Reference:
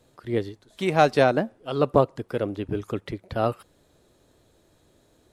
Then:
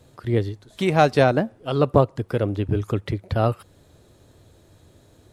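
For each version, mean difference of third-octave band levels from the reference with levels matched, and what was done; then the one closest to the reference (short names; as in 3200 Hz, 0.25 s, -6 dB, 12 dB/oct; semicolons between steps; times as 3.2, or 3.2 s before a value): 1.5 dB: bell 95 Hz +9.5 dB 1.2 oct; in parallel at -2 dB: compressor, threshold -29 dBFS, peak gain reduction 17 dB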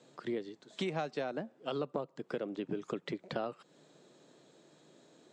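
5.5 dB: Chebyshev band-pass 150–7700 Hz, order 4; compressor 10:1, threshold -34 dBFS, peak gain reduction 21 dB; gain +1 dB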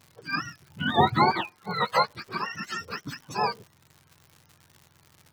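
10.5 dB: spectrum mirrored in octaves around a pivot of 750 Hz; crackle 150/s -40 dBFS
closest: first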